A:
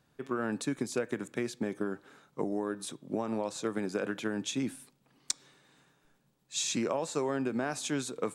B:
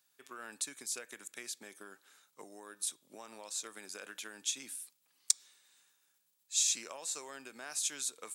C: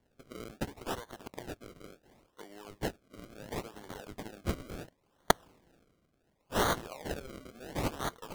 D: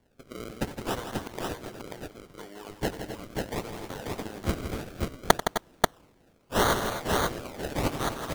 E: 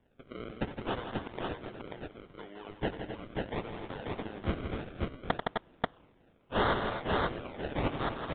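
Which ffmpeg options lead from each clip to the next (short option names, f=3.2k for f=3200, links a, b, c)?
-af "aderivative,volume=5dB"
-af "acrusher=samples=34:mix=1:aa=0.000001:lfo=1:lforange=34:lforate=0.71,volume=2dB"
-af "aecho=1:1:90|164|256|265|537:0.168|0.355|0.2|0.224|0.708,volume=5dB"
-af "asoftclip=type=tanh:threshold=-16dB,aresample=8000,aresample=44100,volume=-2.5dB"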